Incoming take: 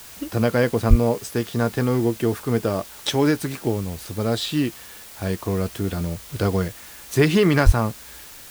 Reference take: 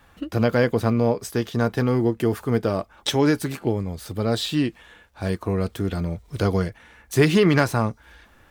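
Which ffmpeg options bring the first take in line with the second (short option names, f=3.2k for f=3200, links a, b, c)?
-filter_complex "[0:a]asplit=3[a][b][c];[a]afade=t=out:st=0.89:d=0.02[d];[b]highpass=f=140:w=0.5412,highpass=f=140:w=1.3066,afade=t=in:st=0.89:d=0.02,afade=t=out:st=1.01:d=0.02[e];[c]afade=t=in:st=1.01:d=0.02[f];[d][e][f]amix=inputs=3:normalize=0,asplit=3[g][h][i];[g]afade=t=out:st=7.65:d=0.02[j];[h]highpass=f=140:w=0.5412,highpass=f=140:w=1.3066,afade=t=in:st=7.65:d=0.02,afade=t=out:st=7.77:d=0.02[k];[i]afade=t=in:st=7.77:d=0.02[l];[j][k][l]amix=inputs=3:normalize=0,afwtdn=0.0079"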